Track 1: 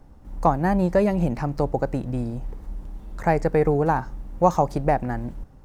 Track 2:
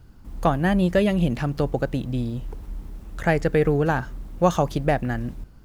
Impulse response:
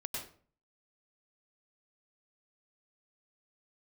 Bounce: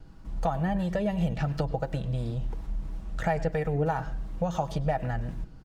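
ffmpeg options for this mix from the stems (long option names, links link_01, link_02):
-filter_complex "[0:a]alimiter=limit=-13.5dB:level=0:latency=1:release=85,acrossover=split=690[link_01][link_02];[link_01]aeval=exprs='val(0)*(1-0.7/2+0.7/2*cos(2*PI*2.9*n/s))':channel_layout=same[link_03];[link_02]aeval=exprs='val(0)*(1-0.7/2-0.7/2*cos(2*PI*2.9*n/s))':channel_layout=same[link_04];[link_03][link_04]amix=inputs=2:normalize=0,volume=-4.5dB,asplit=2[link_05][link_06];[1:a]lowpass=7000,acompressor=threshold=-23dB:ratio=3,adelay=1.8,volume=-2.5dB,asplit=2[link_07][link_08];[link_08]volume=-15.5dB[link_09];[link_06]apad=whole_len=248806[link_10];[link_07][link_10]sidechaincompress=threshold=-34dB:ratio=8:attack=16:release=193[link_11];[2:a]atrim=start_sample=2205[link_12];[link_09][link_12]afir=irnorm=-1:irlink=0[link_13];[link_05][link_11][link_13]amix=inputs=3:normalize=0,aecho=1:1:6.2:0.42"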